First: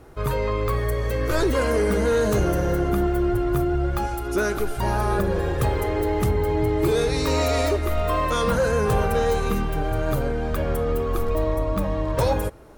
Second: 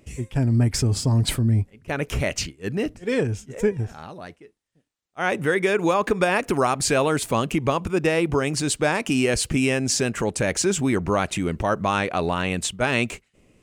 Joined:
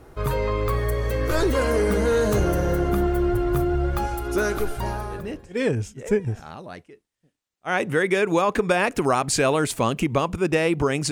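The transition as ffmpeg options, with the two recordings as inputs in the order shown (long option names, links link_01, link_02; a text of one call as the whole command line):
ffmpeg -i cue0.wav -i cue1.wav -filter_complex "[0:a]apad=whole_dur=11.11,atrim=end=11.11,atrim=end=5.66,asetpts=PTS-STARTPTS[link_01];[1:a]atrim=start=2.18:end=8.63,asetpts=PTS-STARTPTS[link_02];[link_01][link_02]acrossfade=duration=1:curve1=qua:curve2=qua" out.wav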